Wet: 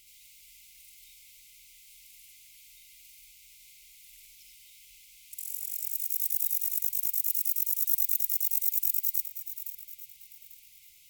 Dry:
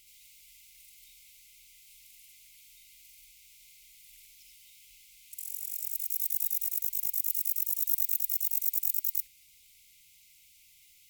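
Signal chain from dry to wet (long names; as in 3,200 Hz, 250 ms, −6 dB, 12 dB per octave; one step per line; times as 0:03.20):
feedback delay that plays each chunk backwards 422 ms, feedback 48%, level −11 dB
level +1.5 dB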